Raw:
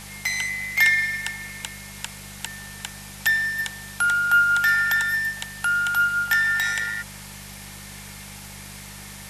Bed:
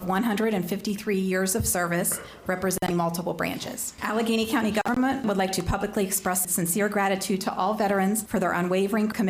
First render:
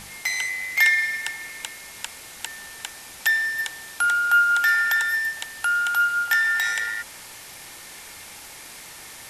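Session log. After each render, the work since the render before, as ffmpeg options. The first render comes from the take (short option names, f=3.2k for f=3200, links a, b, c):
-af "bandreject=f=50:t=h:w=4,bandreject=f=100:t=h:w=4,bandreject=f=150:t=h:w=4,bandreject=f=200:t=h:w=4"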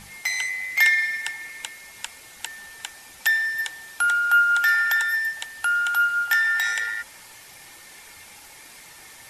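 -af "afftdn=nr=6:nf=-42"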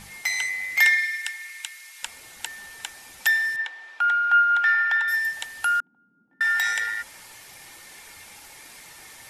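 -filter_complex "[0:a]asettb=1/sr,asplit=3[a][b][c];[a]atrim=end=0.974[d];[b]atrim=start=0.97:end=2.03,asetpts=PTS-STARTPTS,afade=t=in:d=0.004:c=qsin,afade=t=out:st=1.056:d=0.004:c=qsin,highpass=1.5k[e];[c]atrim=start=2.026[f];[d][e]acrossfade=d=0.004:c1=hsin:c2=qsin[g];[g][f]acrossfade=d=0.004:c1=qsin:c2=hsin,asettb=1/sr,asplit=3[h][i][j];[h]atrim=end=3.564[k];[i]atrim=start=3.56:end=5.08,asetpts=PTS-STARTPTS,afade=t=in:d=0.004:c=qsin,afade=t=out:st=1.516:d=0.004:c=qsin,highpass=530,lowpass=2.8k[l];[j]atrim=start=5.076[m];[k][l]acrossfade=d=0.004:c1=hsin:c2=qsin[n];[n][m]acrossfade=d=0.004:c1=qsin:c2=hsin,asettb=1/sr,asplit=3[o][p][q];[o]atrim=end=5.804[r];[p]atrim=start=5.8:end=6.41,asetpts=PTS-STARTPTS,afade=t=in:d=0.004:c=qsin,afade=t=out:st=0.606:d=0.004:c=qsin,asuperpass=centerf=230:order=4:qfactor=2.1[s];[q]atrim=start=6.406[t];[r][s]acrossfade=d=0.004:c1=hsin:c2=qsin[u];[u][t]acrossfade=d=0.004:c1=qsin:c2=hsin"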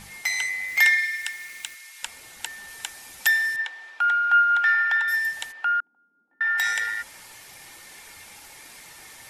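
-filter_complex "[0:a]asettb=1/sr,asplit=3[a][b][c];[a]atrim=end=0.684[d];[b]atrim=start=0.68:end=1.75,asetpts=PTS-STARTPTS,afade=t=in:d=0.004:c=qsin,afade=t=out:st=1.066:d=0.004:c=qsin,aeval=exprs='val(0)*gte(abs(val(0)),0.0075)':c=same[e];[c]atrim=start=1.746[f];[d][e]acrossfade=d=0.004:c1=hsin:c2=qsin[g];[g][f]acrossfade=d=0.004:c1=qsin:c2=hsin,asettb=1/sr,asplit=3[h][i][j];[h]atrim=end=2.684[k];[i]atrim=start=2.68:end=3.9,asetpts=PTS-STARTPTS,afade=t=in:d=0.004:c=qsin,afade=t=out:st=1.216:d=0.004:c=qsin,highshelf=f=5.6k:g=4[l];[j]atrim=start=3.896[m];[k][l]acrossfade=d=0.004:c1=hsin:c2=qsin[n];[n][m]acrossfade=d=0.004:c1=qsin:c2=hsin,asplit=3[o][p][q];[o]afade=t=out:st=5.51:d=0.02[r];[p]highpass=460,lowpass=2.2k,afade=t=in:st=5.51:d=0.02,afade=t=out:st=6.57:d=0.02[s];[q]afade=t=in:st=6.57:d=0.02[t];[r][s][t]amix=inputs=3:normalize=0"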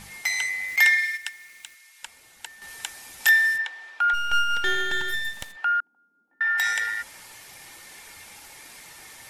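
-filter_complex "[0:a]asettb=1/sr,asplit=3[a][b][c];[a]atrim=end=0.764[d];[b]atrim=start=0.76:end=2.62,asetpts=PTS-STARTPTS,afade=t=in:d=0.004:c=qsin,afade=t=out:st=1.856:d=0.004:c=qsin,agate=range=-8dB:threshold=-31dB:ratio=16:release=100:detection=peak[e];[c]atrim=start=2.616[f];[d][e]acrossfade=d=0.004:c1=hsin:c2=qsin[g];[g][f]acrossfade=d=0.004:c1=qsin:c2=hsin,asettb=1/sr,asplit=3[h][i][j];[h]atrim=end=3.184[k];[i]atrim=start=3.18:end=3.58,asetpts=PTS-STARTPTS,afade=t=in:d=0.004:c=qsin,afade=t=out:st=0.396:d=0.004:c=qsin,asplit=2[l][m];[m]adelay=24,volume=-4.5dB[n];[l][n]amix=inputs=2:normalize=0,atrim=end_sample=17640[o];[j]atrim=start=3.576[p];[k][o]acrossfade=d=0.004:c1=hsin:c2=qsin[q];[q][p]acrossfade=d=0.004:c1=qsin:c2=hsin,asplit=3[r][s][t];[r]afade=t=out:st=4.13:d=0.02[u];[s]aeval=exprs='max(val(0),0)':c=same,afade=t=in:st=4.13:d=0.02,afade=t=out:st=5.55:d=0.02[v];[t]afade=t=in:st=5.55:d=0.02[w];[u][v][w]amix=inputs=3:normalize=0"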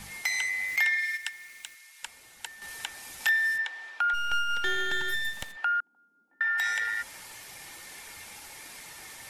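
-filter_complex "[0:a]acrossover=split=360|980|4200[a][b][c][d];[d]alimiter=limit=-23.5dB:level=0:latency=1:release=220[e];[a][b][c][e]amix=inputs=4:normalize=0,acompressor=threshold=-28dB:ratio=2"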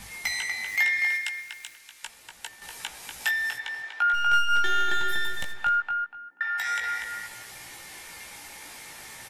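-filter_complex "[0:a]asplit=2[a][b];[b]adelay=17,volume=-5dB[c];[a][c]amix=inputs=2:normalize=0,asplit=2[d][e];[e]adelay=242,lowpass=f=3k:p=1,volume=-4dB,asplit=2[f][g];[g]adelay=242,lowpass=f=3k:p=1,volume=0.24,asplit=2[h][i];[i]adelay=242,lowpass=f=3k:p=1,volume=0.24[j];[d][f][h][j]amix=inputs=4:normalize=0"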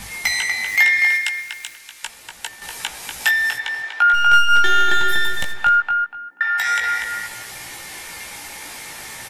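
-af "volume=9dB"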